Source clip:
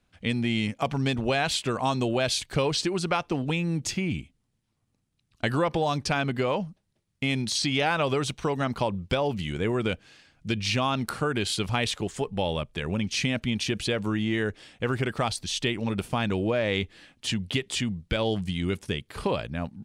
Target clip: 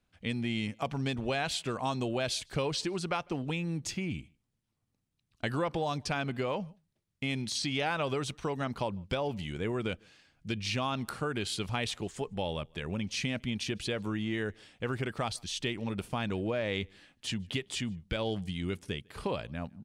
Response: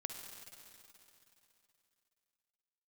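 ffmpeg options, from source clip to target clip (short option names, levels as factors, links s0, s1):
-filter_complex "[0:a]asplit=2[s0][s1];[s1]adelay=151.6,volume=0.0355,highshelf=f=4000:g=-3.41[s2];[s0][s2]amix=inputs=2:normalize=0,volume=0.473"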